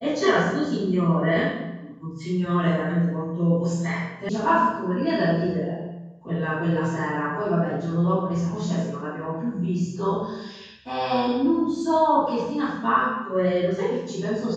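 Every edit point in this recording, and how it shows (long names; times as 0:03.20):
0:04.29: cut off before it has died away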